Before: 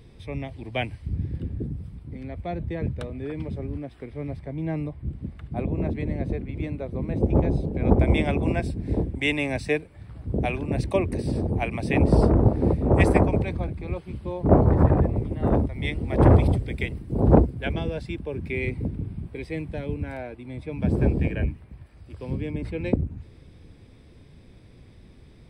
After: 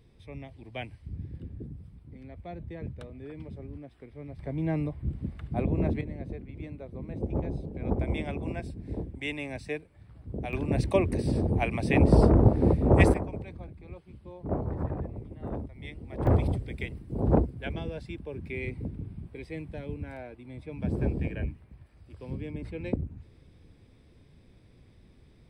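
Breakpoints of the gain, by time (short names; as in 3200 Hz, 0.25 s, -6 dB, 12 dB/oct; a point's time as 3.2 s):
-10 dB
from 4.39 s -0.5 dB
from 6.01 s -10 dB
from 10.53 s -1 dB
from 13.14 s -14 dB
from 16.27 s -7 dB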